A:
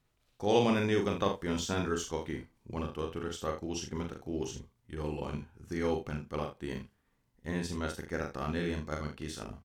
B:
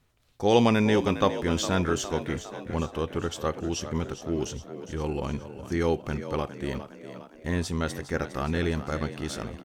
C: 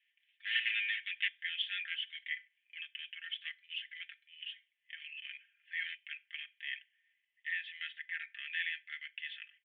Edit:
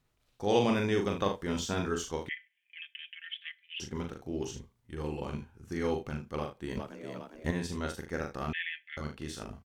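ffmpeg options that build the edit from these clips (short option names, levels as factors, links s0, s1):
-filter_complex "[2:a]asplit=2[s0][s1];[0:a]asplit=4[s2][s3][s4][s5];[s2]atrim=end=2.292[s6];[s0]atrim=start=2.288:end=3.802[s7];[s3]atrim=start=3.798:end=6.772[s8];[1:a]atrim=start=6.768:end=7.512[s9];[s4]atrim=start=7.508:end=8.532[s10];[s1]atrim=start=8.528:end=8.972[s11];[s5]atrim=start=8.968[s12];[s6][s7]acrossfade=d=0.004:c1=hsin:c2=hsin[s13];[s13][s8]acrossfade=d=0.004:c1=hsin:c2=hsin[s14];[s14][s9]acrossfade=d=0.004:c1=hsin:c2=hsin[s15];[s15][s10]acrossfade=d=0.004:c1=hsin:c2=hsin[s16];[s16][s11]acrossfade=d=0.004:c1=hsin:c2=hsin[s17];[s17][s12]acrossfade=d=0.004:c1=hsin:c2=hsin"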